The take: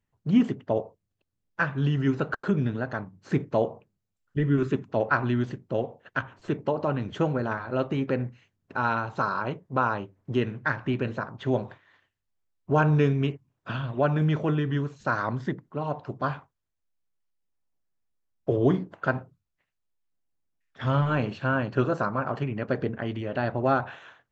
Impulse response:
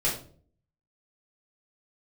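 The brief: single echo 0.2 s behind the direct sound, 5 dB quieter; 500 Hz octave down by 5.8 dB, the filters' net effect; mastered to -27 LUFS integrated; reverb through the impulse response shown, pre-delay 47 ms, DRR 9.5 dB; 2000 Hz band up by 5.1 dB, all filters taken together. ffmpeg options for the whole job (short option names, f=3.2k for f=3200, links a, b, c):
-filter_complex "[0:a]equalizer=f=500:t=o:g=-8,equalizer=f=2k:t=o:g=8.5,aecho=1:1:200:0.562,asplit=2[a][b];[1:a]atrim=start_sample=2205,adelay=47[c];[b][c]afir=irnorm=-1:irlink=0,volume=-18.5dB[d];[a][d]amix=inputs=2:normalize=0,volume=-1dB"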